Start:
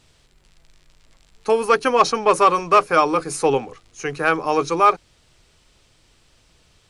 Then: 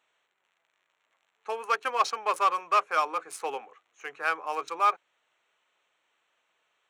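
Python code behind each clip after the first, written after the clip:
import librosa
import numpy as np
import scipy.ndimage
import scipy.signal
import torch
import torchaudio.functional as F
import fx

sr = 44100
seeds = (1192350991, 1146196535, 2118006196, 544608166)

y = fx.wiener(x, sr, points=9)
y = scipy.signal.sosfilt(scipy.signal.butter(2, 820.0, 'highpass', fs=sr, output='sos'), y)
y = y * librosa.db_to_amplitude(-7.0)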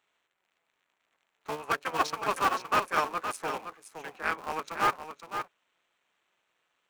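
y = fx.cycle_switch(x, sr, every=3, mode='muted')
y = y + 10.0 ** (-8.5 / 20.0) * np.pad(y, (int(516 * sr / 1000.0), 0))[:len(y)]
y = y * librosa.db_to_amplitude(-1.0)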